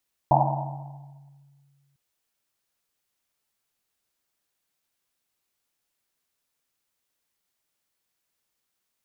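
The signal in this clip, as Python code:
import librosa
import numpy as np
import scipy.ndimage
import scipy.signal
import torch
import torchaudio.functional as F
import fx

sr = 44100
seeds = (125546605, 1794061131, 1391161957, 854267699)

y = fx.risset_drum(sr, seeds[0], length_s=1.65, hz=140.0, decay_s=2.24, noise_hz=790.0, noise_width_hz=310.0, noise_pct=55)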